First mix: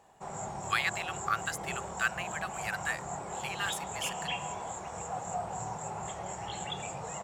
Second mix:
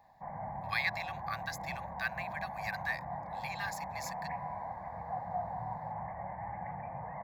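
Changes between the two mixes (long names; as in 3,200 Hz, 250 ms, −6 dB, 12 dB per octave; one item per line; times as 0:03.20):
background: add Butterworth low-pass 2,100 Hz 72 dB per octave
master: add phaser with its sweep stopped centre 2,000 Hz, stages 8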